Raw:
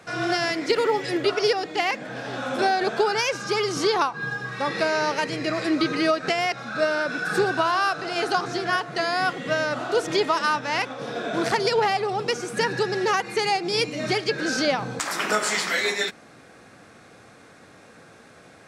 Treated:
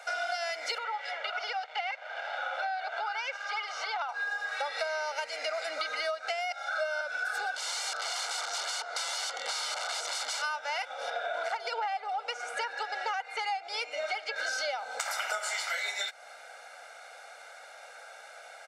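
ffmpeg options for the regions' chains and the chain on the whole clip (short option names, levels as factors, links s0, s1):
-filter_complex "[0:a]asettb=1/sr,asplit=3[s0][s1][s2];[s0]atrim=end=0.784[s3];[s1]atrim=start=0.78:end=4.09,asetpts=PTS-STARTPTS,afade=t=in:d=0.004:c=qsin,afade=t=out:st=3.306:d=0.004:c=qsin,acompressor=threshold=0.0708:ratio=2:attack=3.2:release=140:knee=1:detection=peak,aeval=exprs='sgn(val(0))*max(abs(val(0))-0.0112,0)':c=same,highpass=620,lowpass=3000[s4];[s2]atrim=start=4.086[s5];[s3][s4]acrossfade=d=0.004:c1=hsin:c2=qsin[s6];[s6][s5]acrossfade=d=0.004:c1=qsin:c2=hsin,asettb=1/sr,asplit=3[s7][s8][s9];[s7]atrim=end=6.514[s10];[s8]atrim=start=6.51:end=7.01,asetpts=PTS-STARTPTS,afade=t=in:d=0.004:c=qsin,afade=t=out:st=0.496:d=0.004:c=qsin,highpass=f=450:w=0.5412,highpass=f=450:w=1.3066,aecho=1:1:1.4:0.68,atrim=end_sample=22050[s11];[s9]atrim=start=7.006[s12];[s10][s11]acrossfade=d=0.004:c1=hsin:c2=qsin[s13];[s13][s12]acrossfade=d=0.004:c1=qsin:c2=hsin,asettb=1/sr,asplit=3[s14][s15][s16];[s14]atrim=end=7.564[s17];[s15]atrim=start=7.56:end=10.42,asetpts=PTS-STARTPTS,afade=t=in:d=0.004:c=qsin,afade=t=out:st=2.856:d=0.004:c=qsin,aeval=exprs='(mod(16.8*val(0)+1,2)-1)/16.8':c=same,highpass=170,equalizer=f=400:t=q:w=4:g=6,equalizer=f=670:t=q:w=4:g=-5,equalizer=f=1100:t=q:w=4:g=4,equalizer=f=1800:t=q:w=4:g=-3,equalizer=f=2600:t=q:w=4:g=-6,equalizer=f=4500:t=q:w=4:g=4,lowpass=f=8300:w=0.5412,lowpass=f=8300:w=1.3066[s18];[s16]atrim=start=10.416[s19];[s17][s18]acrossfade=d=0.004:c1=hsin:c2=qsin[s20];[s20][s19]acrossfade=d=0.004:c1=qsin:c2=hsin,asettb=1/sr,asplit=3[s21][s22][s23];[s21]atrim=end=11.104[s24];[s22]atrim=start=11.1:end=14.36,asetpts=PTS-STARTPTS,afade=t=in:d=0.004:c=qsin,afade=t=out:st=3.256:d=0.004:c=qsin,highpass=210,lowpass=7000,equalizer=f=5500:t=o:w=1.4:g=-7.5[s25];[s23]atrim=start=14.356[s26];[s24][s25]acrossfade=d=0.004:c1=hsin:c2=qsin[s27];[s27][s26]acrossfade=d=0.004:c1=qsin:c2=hsin,highpass=f=580:w=0.5412,highpass=f=580:w=1.3066,aecho=1:1:1.4:0.9,acompressor=threshold=0.0282:ratio=6"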